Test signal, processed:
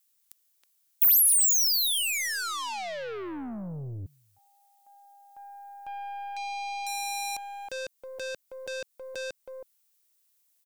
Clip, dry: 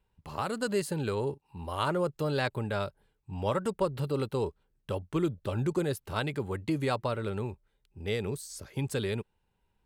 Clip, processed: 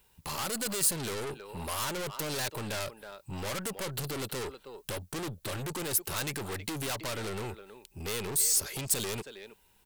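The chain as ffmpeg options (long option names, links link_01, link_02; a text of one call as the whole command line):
ffmpeg -i in.wav -filter_complex "[0:a]lowshelf=frequency=190:gain=-6.5,asplit=2[link_01][link_02];[link_02]acompressor=threshold=-41dB:ratio=6,volume=-0.5dB[link_03];[link_01][link_03]amix=inputs=2:normalize=0,asplit=2[link_04][link_05];[link_05]adelay=320,highpass=300,lowpass=3400,asoftclip=type=hard:threshold=-23dB,volume=-18dB[link_06];[link_04][link_06]amix=inputs=2:normalize=0,aeval=exprs='(tanh(56.2*val(0)+0.5)-tanh(0.5))/56.2':channel_layout=same,aeval=exprs='0.0266*sin(PI/2*1.41*val(0)/0.0266)':channel_layout=same,crystalizer=i=4:c=0,volume=-2dB" out.wav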